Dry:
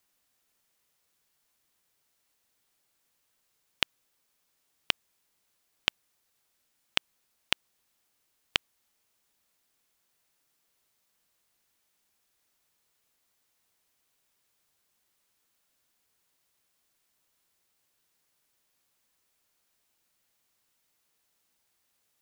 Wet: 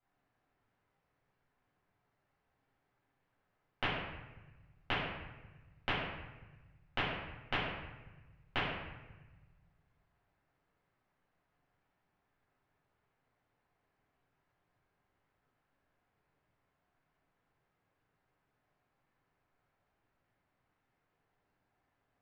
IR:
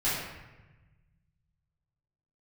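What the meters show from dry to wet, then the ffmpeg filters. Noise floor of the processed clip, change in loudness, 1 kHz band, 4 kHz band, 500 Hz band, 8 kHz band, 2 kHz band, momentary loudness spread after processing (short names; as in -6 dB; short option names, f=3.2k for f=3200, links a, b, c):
-82 dBFS, -7.0 dB, +4.0 dB, -10.5 dB, +4.5 dB, under -20 dB, -2.5 dB, 18 LU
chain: -filter_complex "[0:a]lowpass=1.4k[a];[1:a]atrim=start_sample=2205[b];[a][b]afir=irnorm=-1:irlink=0,volume=-5dB"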